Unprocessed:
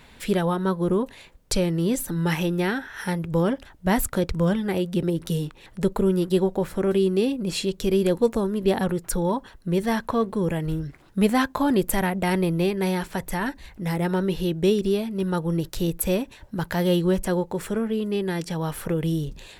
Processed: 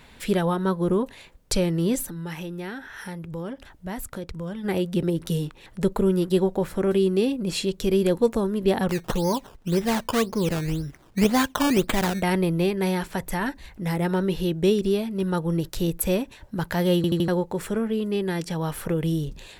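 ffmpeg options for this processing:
-filter_complex "[0:a]asplit=3[a][b][c];[a]afade=t=out:st=2.06:d=0.02[d];[b]acompressor=threshold=-38dB:ratio=2:attack=3.2:release=140:knee=1:detection=peak,afade=t=in:st=2.06:d=0.02,afade=t=out:st=4.63:d=0.02[e];[c]afade=t=in:st=4.63:d=0.02[f];[d][e][f]amix=inputs=3:normalize=0,asettb=1/sr,asplit=3[g][h][i];[g]atrim=end=8.894[j];[h]atrim=start=8.89:end=12.22,asetpts=PTS-STARTPTS,afade=t=in:d=0.004:c=qsin,afade=t=out:st=3.326:d=0.004:c=qsin,acrusher=samples=15:mix=1:aa=0.000001:lfo=1:lforange=15:lforate=1.9[k];[i]atrim=start=12.216[l];[j][k]acrossfade=d=0.004:c1=hsin:c2=qsin[m];[m][l]acrossfade=d=0.004:c1=qsin:c2=hsin,asplit=5[n][o][p][q][r];[n]atrim=end=17.042[s];[o]atrim=start=16.958:end=17.042[t];[p]atrim=start=16.958:end=17.042[u];[q]atrim=start=16.958:end=17.042[v];[r]atrim=start=17.278[w];[s][t]acrossfade=d=0.004:c1=hsin:c2=hsin[x];[x][u]acrossfade=d=0.004:c1=hsin:c2=hsin[y];[y][v]acrossfade=d=0.004:c1=hsin:c2=hsin[z];[z][w]acrossfade=d=0.004:c1=hsin:c2=hsin"

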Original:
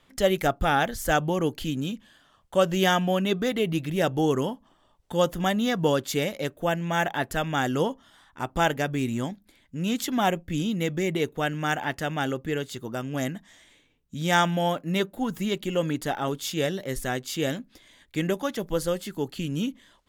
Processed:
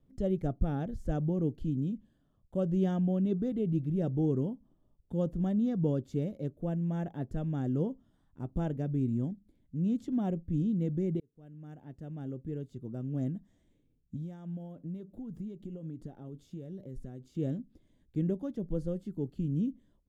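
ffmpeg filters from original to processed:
-filter_complex "[0:a]asettb=1/sr,asplit=3[a][b][c];[a]atrim=end=14.164[d];[b]atrim=start=14.16:end=17.35,asetpts=PTS-STARTPTS,afade=t=in:d=0.004:c=qsin,afade=t=out:st=3.186:d=0.004:c=qsin,acompressor=threshold=-34dB:ratio=6:attack=3.2:release=140:knee=1:detection=peak[e];[c]atrim=start=17.346[f];[d][e]acrossfade=d=0.004:c1=hsin:c2=qsin[g];[g][f]acrossfade=d=0.004:c1=qsin:c2=hsin,asplit=2[h][i];[h]atrim=end=11.2,asetpts=PTS-STARTPTS,afade=t=out:st=11.196:d=0.004:c=hsin[j];[i]atrim=start=11.2,asetpts=PTS-STARTPTS,afade=t=in:d=2.03[k];[j][k]concat=n=2:v=0:a=1,acrossover=split=8600[l][m];[m]acompressor=threshold=-57dB:ratio=4:attack=1:release=60[n];[l][n]amix=inputs=2:normalize=0,firequalizer=gain_entry='entry(140,0);entry(880,-22);entry(2000,-29);entry(9200,-25)':delay=0.05:min_phase=1"

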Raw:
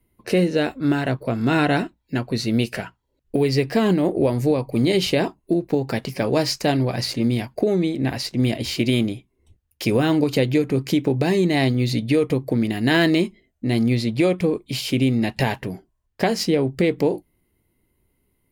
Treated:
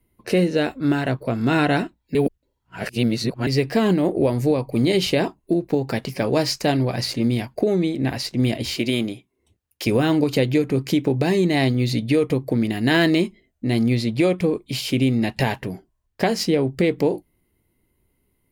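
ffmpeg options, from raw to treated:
-filter_complex "[0:a]asettb=1/sr,asplit=3[a][b][c];[a]atrim=end=8.774[d];[b]atrim=start=8.77:end=9.87,asetpts=PTS-STARTPTS,afade=t=in:d=0.004:c=qsin,afade=t=out:st=1.096:d=0.004:c=qsin,highpass=f=230:p=1[e];[c]atrim=start=9.866[f];[d][e]acrossfade=d=0.004:c1=hsin:c2=qsin[g];[g][f]acrossfade=d=0.004:c1=qsin:c2=hsin,asplit=3[h][i][j];[h]atrim=end=2.152[k];[i]atrim=start=2.148:end=3.472,asetpts=PTS-STARTPTS,areverse[l];[j]atrim=start=3.468[m];[k][l]acrossfade=d=0.004:c1=hsin:c2=hsin[n];[n][m]acrossfade=d=0.004:c1=hsin:c2=hsin"

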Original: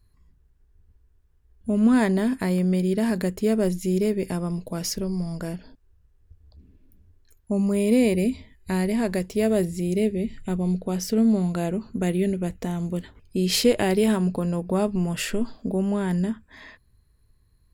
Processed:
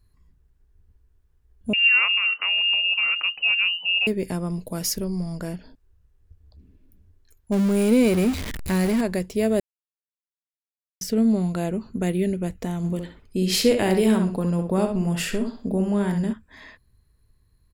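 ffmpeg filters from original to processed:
-filter_complex "[0:a]asettb=1/sr,asplit=3[a][b][c];[a]atrim=end=1.734[d];[b]atrim=start=1.73:end=4.07,asetpts=PTS-STARTPTS,afade=t=in:d=0.004:c=qsin,afade=t=out:st=2.336:d=0.004:c=qsin,lowpass=f=2.6k:t=q:w=0.5098,lowpass=f=2.6k:t=q:w=0.6013,lowpass=f=2.6k:t=q:w=0.9,lowpass=f=2.6k:t=q:w=2.563,afreqshift=-3000[e];[c]atrim=start=4.066[f];[d][e]acrossfade=d=0.004:c1=hsin:c2=qsin[g];[g][f]acrossfade=d=0.004:c1=qsin:c2=hsin,asettb=1/sr,asplit=3[h][i][j];[h]atrim=end=4.594[k];[i]atrim=start=4.59:end=5.05,asetpts=PTS-STARTPTS,afade=t=in:d=0.004:c=qsin,afade=t=out:st=0.456:d=0.004:c=qsin,equalizer=f=13k:w=0.59:g=8[l];[j]atrim=start=5.046[m];[k][l]acrossfade=d=0.004:c1=hsin:c2=qsin[n];[n][m]acrossfade=d=0.004:c1=qsin:c2=hsin,asettb=1/sr,asplit=3[o][p][q];[o]atrim=end=7.524[r];[p]atrim=start=7.52:end=9.01,asetpts=PTS-STARTPTS,afade=t=in:d=0.004:c=qsin,afade=t=out:st=1.486:d=0.004:c=qsin,aeval=exprs='val(0)+0.5*0.0531*sgn(val(0))':c=same[s];[q]atrim=start=9.006[t];[r][s]acrossfade=d=0.004:c1=hsin:c2=qsin[u];[u][t]acrossfade=d=0.004:c1=qsin:c2=hsin,asplit=3[v][w][x];[v]afade=t=out:st=12.83:d=0.02[y];[w]asplit=2[z][aa];[aa]adelay=64,lowpass=f=4.9k:p=1,volume=-6dB,asplit=2[ab][ac];[ac]adelay=64,lowpass=f=4.9k:p=1,volume=0.25,asplit=2[ad][ae];[ae]adelay=64,lowpass=f=4.9k:p=1,volume=0.25[af];[z][ab][ad][af]amix=inputs=4:normalize=0,afade=t=in:st=12.83:d=0.02,afade=t=out:st=16.32:d=0.02[ag];[x]afade=t=in:st=16.32:d=0.02[ah];[y][ag][ah]amix=inputs=3:normalize=0,asplit=3[ai][aj][ak];[ai]atrim=end=9.6,asetpts=PTS-STARTPTS,afade=t=out:st=9.596:d=0.004:c=hsin[al];[aj]atrim=start=9.6:end=11.01,asetpts=PTS-STARTPTS,volume=0[am];[ak]atrim=start=11.01,asetpts=PTS-STARTPTS,afade=t=in:d=0.004:c=hsin[an];[al][am][an]concat=n=3:v=0:a=1"

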